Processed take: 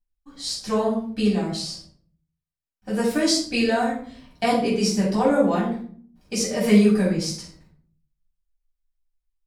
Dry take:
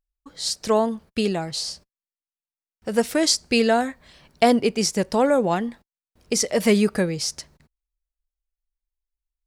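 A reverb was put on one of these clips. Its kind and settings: shoebox room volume 560 m³, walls furnished, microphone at 8.2 m; gain -12 dB

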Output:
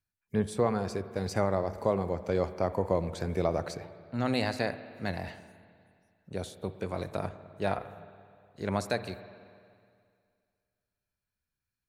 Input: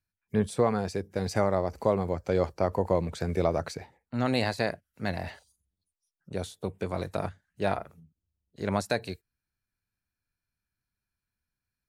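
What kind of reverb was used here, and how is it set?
spring tank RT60 2.2 s, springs 51/59 ms, chirp 35 ms, DRR 12.5 dB; gain -2.5 dB

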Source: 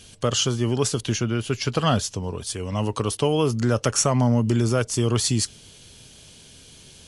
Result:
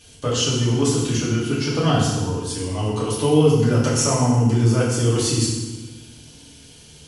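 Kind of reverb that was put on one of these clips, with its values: FDN reverb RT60 1.2 s, low-frequency decay 1.45×, high-frequency decay 0.9×, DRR -7 dB; gain -6 dB

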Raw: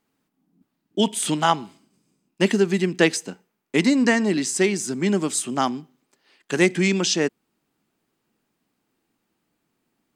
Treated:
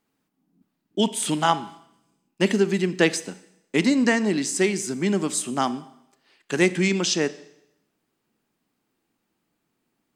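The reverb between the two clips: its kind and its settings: Schroeder reverb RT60 0.82 s, combs from 29 ms, DRR 15.5 dB; gain -1.5 dB

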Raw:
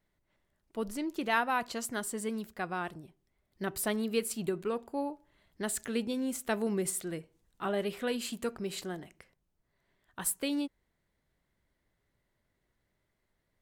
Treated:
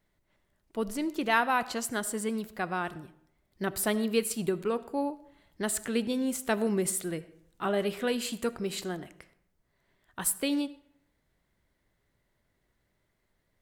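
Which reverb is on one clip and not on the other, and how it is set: digital reverb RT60 0.71 s, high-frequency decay 0.65×, pre-delay 35 ms, DRR 17 dB; gain +3.5 dB

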